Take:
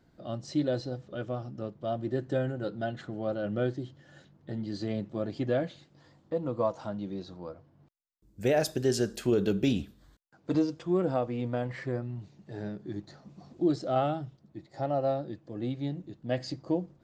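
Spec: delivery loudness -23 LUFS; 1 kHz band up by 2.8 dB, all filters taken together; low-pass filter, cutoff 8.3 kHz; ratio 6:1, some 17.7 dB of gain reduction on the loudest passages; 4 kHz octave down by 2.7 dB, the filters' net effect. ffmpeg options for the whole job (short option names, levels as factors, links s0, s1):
-af "lowpass=8300,equalizer=f=1000:t=o:g=4.5,equalizer=f=4000:t=o:g=-3.5,acompressor=threshold=0.00891:ratio=6,volume=13.3"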